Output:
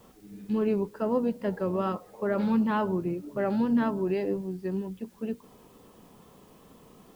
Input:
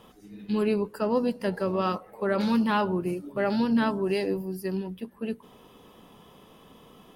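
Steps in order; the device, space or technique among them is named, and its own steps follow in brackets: cassette deck with a dirty head (tape spacing loss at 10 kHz 32 dB; wow and flutter; white noise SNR 35 dB)

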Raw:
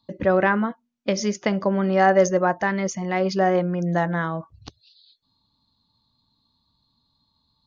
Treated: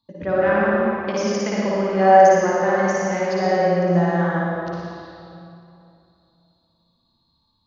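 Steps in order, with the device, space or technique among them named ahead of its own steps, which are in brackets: tunnel (flutter echo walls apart 9.9 m, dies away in 0.87 s; reverberation RT60 2.8 s, pre-delay 49 ms, DRR -5 dB); trim -6.5 dB

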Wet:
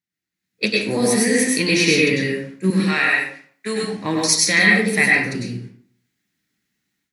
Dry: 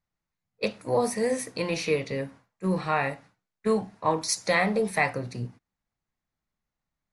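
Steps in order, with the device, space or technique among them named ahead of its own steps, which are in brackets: 2.70–3.83 s: high-pass 810 Hz 6 dB/octave; high-order bell 770 Hz -15 dB; far laptop microphone (reverberation RT60 0.50 s, pre-delay 93 ms, DRR -2 dB; high-pass 190 Hz 12 dB/octave; level rider gain up to 13 dB)

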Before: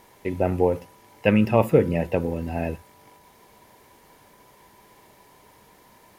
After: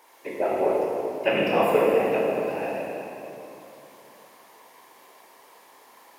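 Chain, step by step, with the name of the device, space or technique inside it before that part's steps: whispering ghost (whisper effect; high-pass 460 Hz 12 dB/octave; reverberation RT60 3.0 s, pre-delay 15 ms, DRR -4 dB); trim -2.5 dB

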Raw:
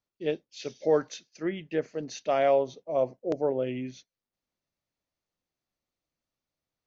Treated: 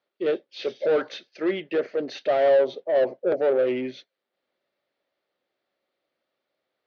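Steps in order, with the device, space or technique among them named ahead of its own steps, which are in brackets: overdrive pedal into a guitar cabinet (overdrive pedal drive 24 dB, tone 3.9 kHz, clips at -13.5 dBFS; cabinet simulation 80–4000 Hz, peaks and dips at 100 Hz -9 dB, 160 Hz -4 dB, 380 Hz +6 dB, 560 Hz +7 dB, 1 kHz -5 dB, 2.6 kHz -4 dB); trim -4.5 dB

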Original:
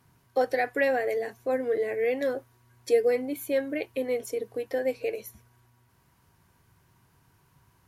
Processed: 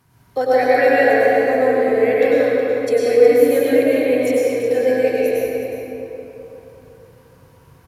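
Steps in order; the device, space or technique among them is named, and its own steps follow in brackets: cave (delay 367 ms -10.5 dB; reverberation RT60 3.4 s, pre-delay 91 ms, DRR -8 dB); trim +3.5 dB

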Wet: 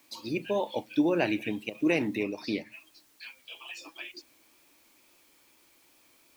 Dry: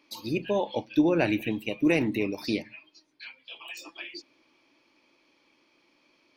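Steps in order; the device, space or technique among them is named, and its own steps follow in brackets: high-pass 180 Hz 6 dB/octave; worn cassette (low-pass 9.5 kHz; wow and flutter; level dips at 1.70/4.12 s, 45 ms -8 dB; white noise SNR 31 dB); 2.23–2.72 s: treble shelf 4.9 kHz -6 dB; trim -1.5 dB

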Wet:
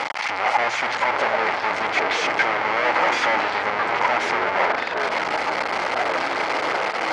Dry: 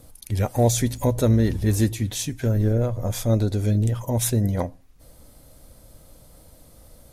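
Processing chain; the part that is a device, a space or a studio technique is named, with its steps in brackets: 2.77–3.44 s: high-pass 470 Hz 6 dB/octave; home computer beeper (one-bit comparator; cabinet simulation 700–4200 Hz, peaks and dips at 850 Hz +10 dB, 1.3 kHz +6 dB, 2.1 kHz +10 dB, 3.7 kHz -8 dB); ever faster or slower copies 600 ms, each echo -5 st, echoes 3, each echo -6 dB; trim +5.5 dB

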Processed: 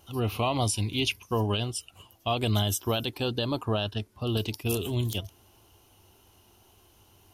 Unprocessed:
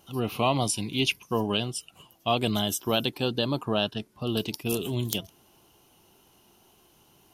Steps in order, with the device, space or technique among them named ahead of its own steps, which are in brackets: car stereo with a boomy subwoofer (resonant low shelf 120 Hz +6 dB, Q 3; peak limiter -16 dBFS, peak gain reduction 9.5 dB)

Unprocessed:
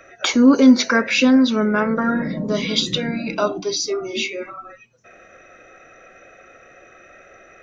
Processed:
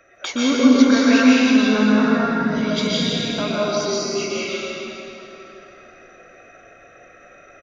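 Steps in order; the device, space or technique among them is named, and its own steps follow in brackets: cave (delay 164 ms -8 dB; reverberation RT60 3.2 s, pre-delay 115 ms, DRR -7 dB); 3.99–4.49 s: band-stop 3.6 kHz, Q 5.2; trim -8 dB

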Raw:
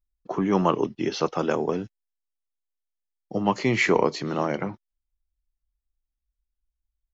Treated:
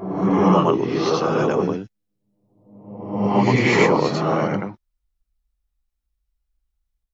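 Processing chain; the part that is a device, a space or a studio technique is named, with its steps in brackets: reverse reverb (reverse; reverberation RT60 0.95 s, pre-delay 74 ms, DRR -4 dB; reverse)

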